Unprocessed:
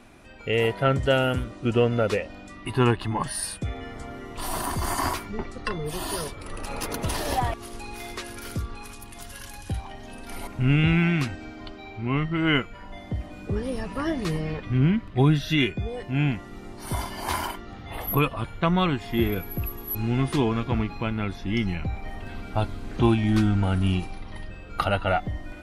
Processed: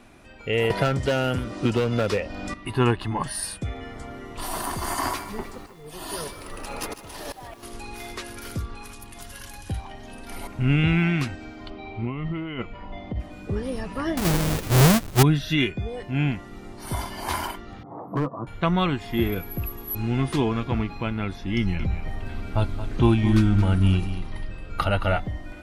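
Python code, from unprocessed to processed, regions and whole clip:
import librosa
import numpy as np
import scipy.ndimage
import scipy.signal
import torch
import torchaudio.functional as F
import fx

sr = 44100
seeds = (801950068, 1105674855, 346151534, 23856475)

y = fx.chain(x, sr, fx.peak_eq(hz=5100.0, db=5.5, octaves=0.38),
    fx.clip_hard(threshold_db=-19.0),
    fx.band_squash(depth_pct=100), at=(0.7, 2.54))
y = fx.chain(y, sr, fx.peak_eq(hz=61.0, db=-6.0, octaves=2.7),
    fx.auto_swell(attack_ms=591.0),
    fx.echo_crushed(ms=152, feedback_pct=55, bits=8, wet_db=-12.5), at=(4.45, 7.63))
y = fx.chain(y, sr, fx.lowpass(hz=3200.0, slope=12),
    fx.peak_eq(hz=1600.0, db=-11.0, octaves=0.34),
    fx.over_compress(threshold_db=-29.0, ratio=-1.0), at=(11.7, 13.2))
y = fx.chain(y, sr, fx.halfwave_hold(),
    fx.high_shelf(hz=5600.0, db=8.5), at=(14.17, 15.23))
y = fx.chain(y, sr, fx.ellip_bandpass(low_hz=130.0, high_hz=1100.0, order=3, stop_db=40),
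    fx.peak_eq(hz=310.0, db=6.0, octaves=0.22),
    fx.clip_hard(threshold_db=-19.5), at=(17.83, 18.47))
y = fx.chain(y, sr, fx.low_shelf(hz=120.0, db=6.0),
    fx.notch(hz=750.0, q=11.0),
    fx.echo_single(ms=222, db=-11.5), at=(21.57, 25.24))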